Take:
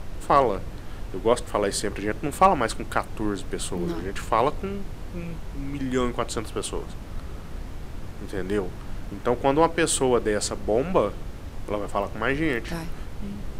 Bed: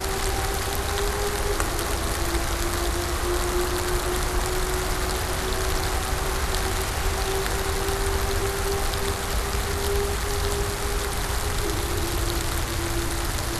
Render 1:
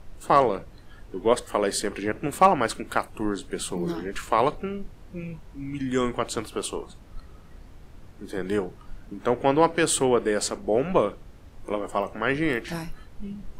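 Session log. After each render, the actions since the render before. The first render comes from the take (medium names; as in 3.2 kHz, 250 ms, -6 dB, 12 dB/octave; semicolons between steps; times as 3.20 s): noise print and reduce 11 dB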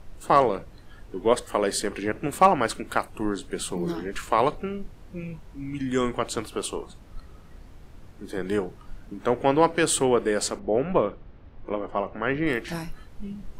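10.59–12.47 s: distance through air 270 m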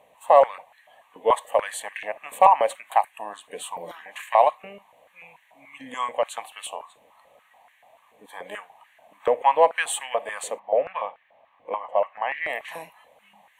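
static phaser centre 1.4 kHz, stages 6; step-sequenced high-pass 6.9 Hz 450–1700 Hz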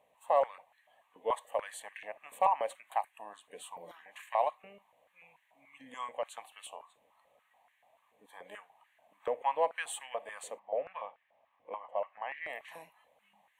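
trim -12.5 dB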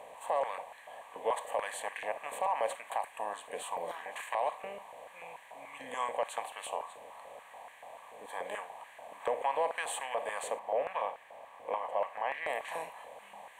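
spectral levelling over time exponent 0.6; peak limiter -21.5 dBFS, peak gain reduction 9.5 dB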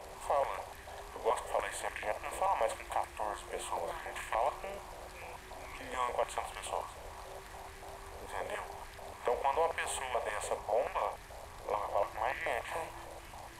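add bed -26.5 dB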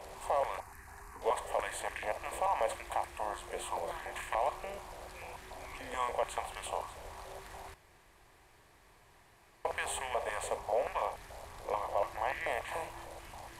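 0.60–1.22 s: static phaser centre 1.4 kHz, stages 4; 7.74–9.65 s: room tone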